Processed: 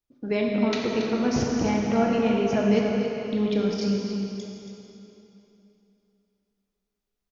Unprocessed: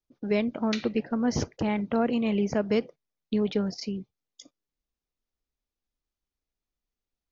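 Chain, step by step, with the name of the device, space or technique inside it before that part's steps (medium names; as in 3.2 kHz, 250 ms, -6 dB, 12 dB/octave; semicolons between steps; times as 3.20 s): cave (delay 278 ms -9 dB; reverberation RT60 3.1 s, pre-delay 21 ms, DRR -1.5 dB)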